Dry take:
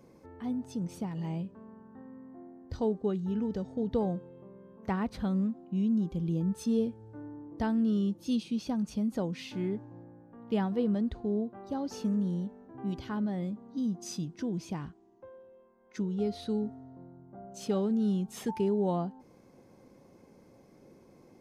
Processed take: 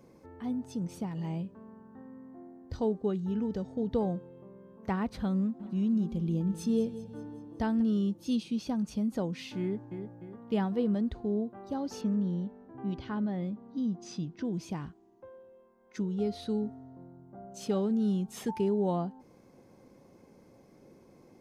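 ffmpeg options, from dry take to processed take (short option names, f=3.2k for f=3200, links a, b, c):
-filter_complex "[0:a]asplit=3[a][b][c];[a]afade=t=out:st=5.59:d=0.02[d];[b]aecho=1:1:192|384|576|768|960:0.188|0.104|0.057|0.0313|0.0172,afade=t=in:st=5.59:d=0.02,afade=t=out:st=7.81:d=0.02[e];[c]afade=t=in:st=7.81:d=0.02[f];[d][e][f]amix=inputs=3:normalize=0,asplit=2[g][h];[h]afade=t=in:st=9.61:d=0.01,afade=t=out:st=10.04:d=0.01,aecho=0:1:300|600|900|1200|1500:0.421697|0.189763|0.0853935|0.0384271|0.0172922[i];[g][i]amix=inputs=2:normalize=0,asettb=1/sr,asplit=3[j][k][l];[j]atrim=end=12.014[m];[k]atrim=start=12.01:end=14.45,asetpts=PTS-STARTPTS,afade=t=in:d=0.004:c=qsin,afade=t=out:st=2.436:d=0.004:c=qsin,lowpass=4.4k[n];[l]atrim=start=14.446[o];[m][n]acrossfade=d=0.004:c1=hsin:c2=qsin[p];[p][o]acrossfade=d=0.004:c1=qsin:c2=hsin"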